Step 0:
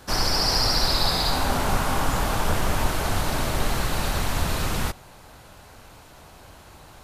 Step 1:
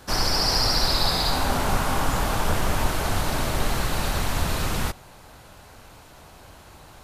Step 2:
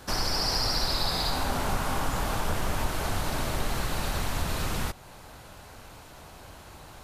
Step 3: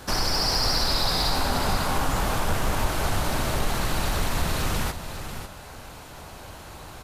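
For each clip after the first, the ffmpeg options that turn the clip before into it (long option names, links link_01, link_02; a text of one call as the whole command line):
ffmpeg -i in.wav -af anull out.wav
ffmpeg -i in.wav -af "acompressor=threshold=-33dB:ratio=1.5" out.wav
ffmpeg -i in.wav -filter_complex "[0:a]asplit=2[link_01][link_02];[link_02]asoftclip=type=tanh:threshold=-29dB,volume=-6dB[link_03];[link_01][link_03]amix=inputs=2:normalize=0,aecho=1:1:546:0.335,volume=1.5dB" out.wav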